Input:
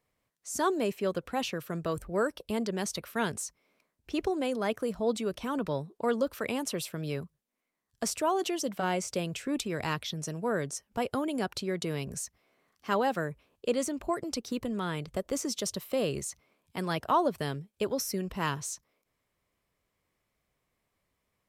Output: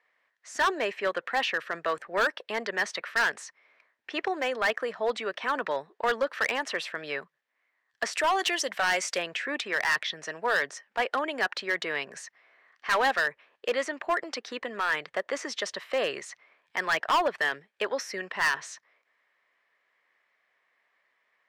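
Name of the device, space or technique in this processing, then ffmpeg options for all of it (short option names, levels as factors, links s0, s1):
megaphone: -filter_complex "[0:a]asettb=1/sr,asplit=3[s0][s1][s2];[s0]atrim=end=8.134[s3];[s1]atrim=start=8.13:end=9.18,asetpts=PTS-STARTPTS,afade=t=in:d=0.004:c=qsin,afade=t=out:st=1.046:d=0.004:c=qsin,aemphasis=mode=production:type=75fm[s4];[s2]atrim=start=9.176[s5];[s3][s4]acrossfade=d=0.004:c1=hsin:c2=qsin[s6];[s6][s5]acrossfade=d=0.004:c1=qsin:c2=hsin,highpass=690,lowpass=3300,equalizer=f=1800:t=o:w=0.42:g=11.5,asoftclip=type=hard:threshold=0.0398,volume=2.51"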